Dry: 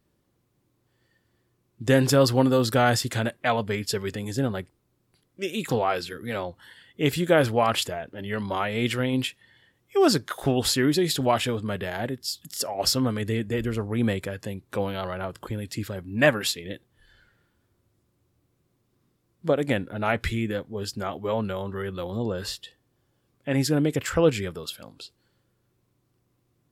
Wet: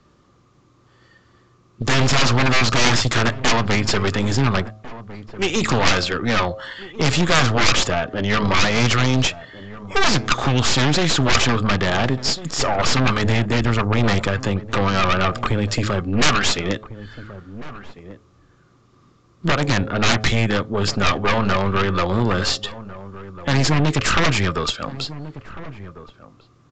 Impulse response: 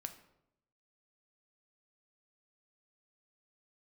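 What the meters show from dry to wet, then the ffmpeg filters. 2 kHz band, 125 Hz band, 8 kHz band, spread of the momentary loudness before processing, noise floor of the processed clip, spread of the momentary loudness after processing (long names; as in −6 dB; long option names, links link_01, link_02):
+10.0 dB, +9.0 dB, +8.0 dB, 12 LU, −56 dBFS, 19 LU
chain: -filter_complex "[0:a]equalizer=frequency=1200:width_type=o:width=0.25:gain=14,bandreject=frequency=107.4:width_type=h:width=4,bandreject=frequency=214.8:width_type=h:width=4,bandreject=frequency=322.2:width_type=h:width=4,bandreject=frequency=429.6:width_type=h:width=4,bandreject=frequency=537:width_type=h:width=4,bandreject=frequency=644.4:width_type=h:width=4,bandreject=frequency=751.8:width_type=h:width=4,acrossover=split=190|880|2900[link_01][link_02][link_03][link_04];[link_02]acompressor=threshold=-34dB:ratio=6[link_05];[link_01][link_05][link_03][link_04]amix=inputs=4:normalize=0,aeval=exprs='0.501*(cos(1*acos(clip(val(0)/0.501,-1,1)))-cos(1*PI/2))+0.224*(cos(3*acos(clip(val(0)/0.501,-1,1)))-cos(3*PI/2))+0.0794*(cos(6*acos(clip(val(0)/0.501,-1,1)))-cos(6*PI/2))':channel_layout=same,aeval=exprs='0.794*sin(PI/2*10*val(0)/0.794)':channel_layout=same,aeval=exprs='(tanh(2*val(0)+0.45)-tanh(0.45))/2':channel_layout=same,asplit=2[link_06][link_07];[link_07]adelay=1399,volume=-15dB,highshelf=frequency=4000:gain=-31.5[link_08];[link_06][link_08]amix=inputs=2:normalize=0,aresample=16000,aresample=44100,volume=1.5dB"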